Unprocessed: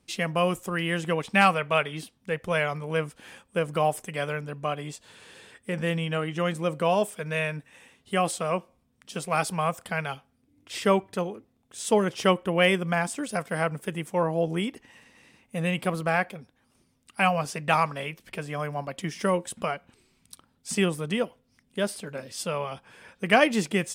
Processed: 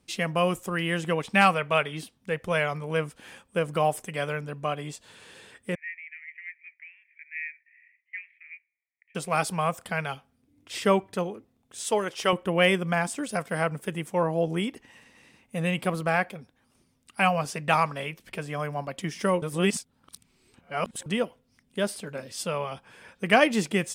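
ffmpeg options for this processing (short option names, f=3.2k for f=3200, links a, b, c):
-filter_complex "[0:a]asettb=1/sr,asplit=3[a][b][c];[a]atrim=end=5.754[d];[b]atrim=start=5.75:end=9.15,asetpts=PTS-STARTPTS,afade=t=in:d=0.004:c=qsin,afade=t=out:st=3.396:d=0.004:c=qsin,asuperpass=centerf=2100:order=8:qfactor=3.4[e];[c]atrim=start=9.146[f];[d][e]acrossfade=d=0.004:c1=hsin:c2=qsin[g];[g][f]acrossfade=d=0.004:c1=qsin:c2=hsin,asettb=1/sr,asplit=3[h][i][j];[h]atrim=end=11.844[k];[i]atrim=start=11.84:end=12.33,asetpts=PTS-STARTPTS,afade=t=in:d=0.004:c=qsin,afade=t=out:st=0.486:d=0.004:c=qsin,equalizer=f=140:t=o:w=2.3:g=-12[l];[j]atrim=start=12.326[m];[k][l]acrossfade=d=0.004:c1=hsin:c2=qsin[n];[n][m]acrossfade=d=0.004:c1=qsin:c2=hsin,asplit=3[o][p][q];[o]atrim=end=19.422[r];[p]atrim=start=19.418:end=21.062,asetpts=PTS-STARTPTS,areverse[s];[q]atrim=start=21.058[t];[r][s]acrossfade=d=0.004:c1=hsin:c2=hsin[u];[u][t]acrossfade=d=0.004:c1=hsin:c2=hsin"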